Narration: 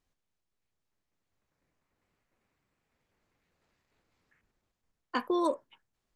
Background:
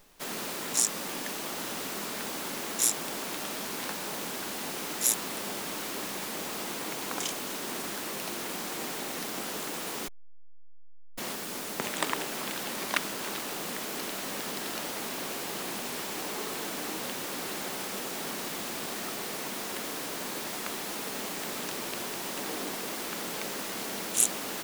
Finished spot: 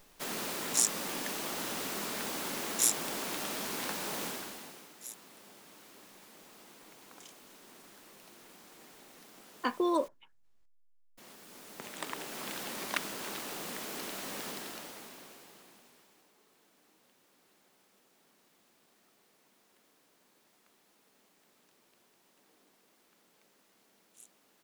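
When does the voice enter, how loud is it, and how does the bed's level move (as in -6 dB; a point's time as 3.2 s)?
4.50 s, -0.5 dB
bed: 4.26 s -1.5 dB
4.93 s -20 dB
11.11 s -20 dB
12.52 s -5 dB
14.48 s -5 dB
16.33 s -32.5 dB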